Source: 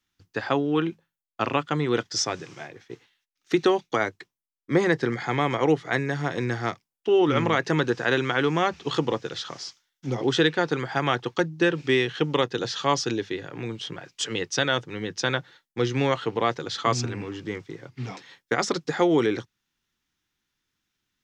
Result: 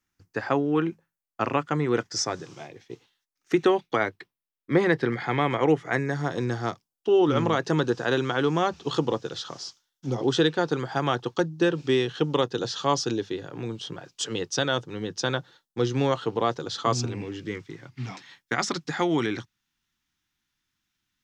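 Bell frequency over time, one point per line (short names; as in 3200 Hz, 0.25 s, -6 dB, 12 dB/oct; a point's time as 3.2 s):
bell -9.5 dB 0.72 oct
2.17 s 3500 Hz
2.8 s 1300 Hz
3.86 s 6700 Hz
5.41 s 6700 Hz
6.38 s 2100 Hz
16.98 s 2100 Hz
17.79 s 470 Hz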